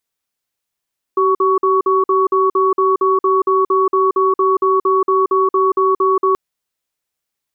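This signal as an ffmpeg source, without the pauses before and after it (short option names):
-f lavfi -i "aevalsrc='0.211*(sin(2*PI*383*t)+sin(2*PI*1120*t))*clip(min(mod(t,0.23),0.18-mod(t,0.23))/0.005,0,1)':d=5.18:s=44100"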